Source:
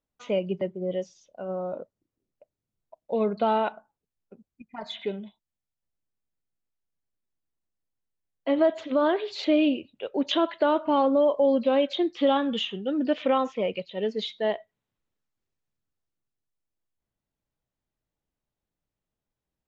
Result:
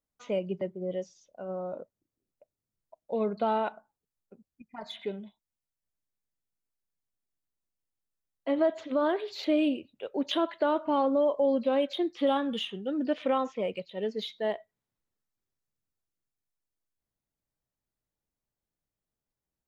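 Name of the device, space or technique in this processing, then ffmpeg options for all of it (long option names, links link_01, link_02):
exciter from parts: -filter_complex "[0:a]asplit=2[link_01][link_02];[link_02]highpass=frequency=2700:width=0.5412,highpass=frequency=2700:width=1.3066,asoftclip=type=tanh:threshold=-39dB,volume=-8dB[link_03];[link_01][link_03]amix=inputs=2:normalize=0,volume=-4dB"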